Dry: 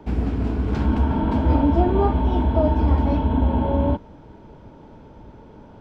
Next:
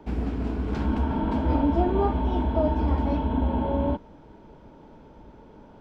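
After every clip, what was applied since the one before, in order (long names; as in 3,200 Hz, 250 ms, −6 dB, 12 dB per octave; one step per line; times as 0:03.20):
parametric band 100 Hz −6.5 dB 0.93 octaves
level −3.5 dB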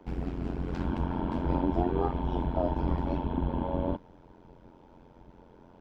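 amplitude modulation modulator 88 Hz, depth 85%
level −1.5 dB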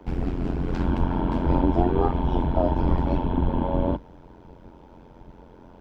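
sub-octave generator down 2 octaves, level −3 dB
level +6 dB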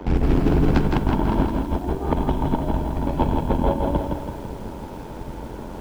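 compressor whose output falls as the input rises −27 dBFS, ratio −0.5
feedback echo at a low word length 164 ms, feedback 55%, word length 9 bits, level −4 dB
level +6.5 dB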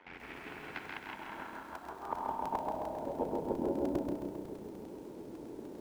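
band-pass filter sweep 2,100 Hz → 350 Hz, 0:01.19–0:03.71
regular buffer underruns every 0.10 s, samples 128, repeat
feedback echo at a low word length 133 ms, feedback 55%, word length 9 bits, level −4.5 dB
level −6.5 dB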